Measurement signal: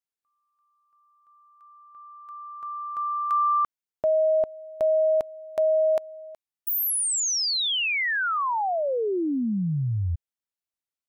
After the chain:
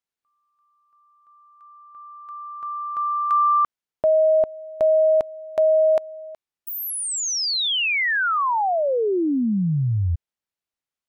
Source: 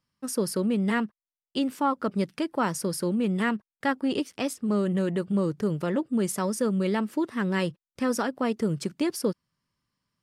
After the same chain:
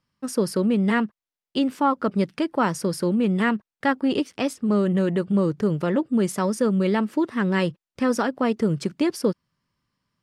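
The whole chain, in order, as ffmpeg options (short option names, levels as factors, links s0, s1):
-af "highshelf=f=7400:g=-10,volume=1.68"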